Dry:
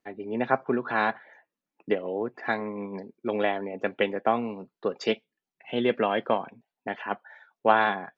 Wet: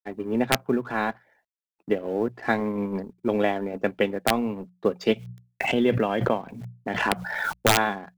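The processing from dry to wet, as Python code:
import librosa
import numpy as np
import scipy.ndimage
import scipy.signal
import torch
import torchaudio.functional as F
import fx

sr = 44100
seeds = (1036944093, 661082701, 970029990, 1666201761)

y = fx.law_mismatch(x, sr, coded='A')
y = fx.rider(y, sr, range_db=4, speed_s=0.5)
y = fx.low_shelf(y, sr, hz=300.0, db=10.5)
y = fx.hum_notches(y, sr, base_hz=60, count=3)
y = (np.mod(10.0 ** (8.0 / 20.0) * y + 1.0, 2.0) - 1.0) / 10.0 ** (8.0 / 20.0)
y = fx.pre_swell(y, sr, db_per_s=34.0, at=(5.1, 7.67))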